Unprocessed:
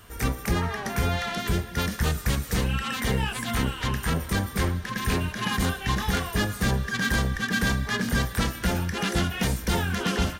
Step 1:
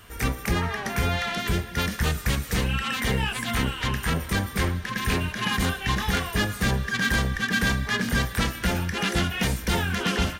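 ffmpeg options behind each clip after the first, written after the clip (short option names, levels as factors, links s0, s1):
-af "equalizer=f=2400:w=1.1:g=4"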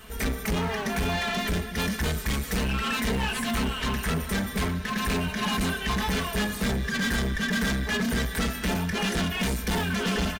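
-filter_complex "[0:a]aecho=1:1:4.6:0.81,asplit=2[s0][s1];[s1]acrusher=samples=25:mix=1:aa=0.000001,volume=0.282[s2];[s0][s2]amix=inputs=2:normalize=0,asoftclip=type=tanh:threshold=0.075"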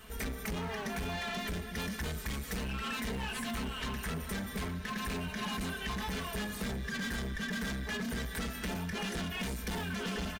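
-af "acompressor=threshold=0.0355:ratio=6,volume=0.531"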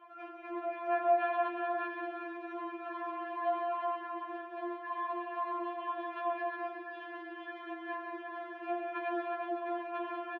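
-filter_complex "[0:a]highpass=f=190:w=0.5412,highpass=f=190:w=1.3066,equalizer=f=320:t=q:w=4:g=8,equalizer=f=710:t=q:w=4:g=8,equalizer=f=1000:t=q:w=4:g=7,equalizer=f=2000:t=q:w=4:g=-4,lowpass=f=2200:w=0.5412,lowpass=f=2200:w=1.3066,asplit=2[s0][s1];[s1]aecho=0:1:54|145|187|365:0.282|0.335|0.422|0.531[s2];[s0][s2]amix=inputs=2:normalize=0,afftfilt=real='re*4*eq(mod(b,16),0)':imag='im*4*eq(mod(b,16),0)':win_size=2048:overlap=0.75,volume=0.75"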